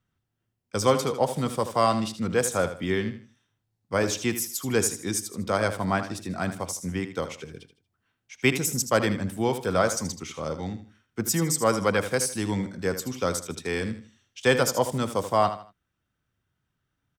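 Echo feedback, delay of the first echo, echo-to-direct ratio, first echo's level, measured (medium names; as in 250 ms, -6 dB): 31%, 78 ms, -10.5 dB, -11.0 dB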